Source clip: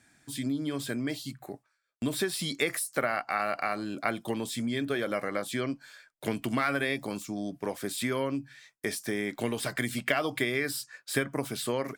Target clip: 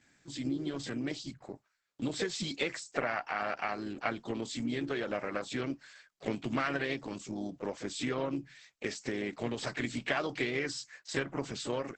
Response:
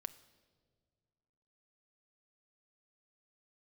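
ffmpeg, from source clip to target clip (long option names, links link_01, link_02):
-filter_complex "[0:a]asplit=3[link_01][link_02][link_03];[link_02]asetrate=52444,aresample=44100,atempo=0.840896,volume=-10dB[link_04];[link_03]asetrate=55563,aresample=44100,atempo=0.793701,volume=-13dB[link_05];[link_01][link_04][link_05]amix=inputs=3:normalize=0,volume=-3.5dB" -ar 48000 -c:a libopus -b:a 10k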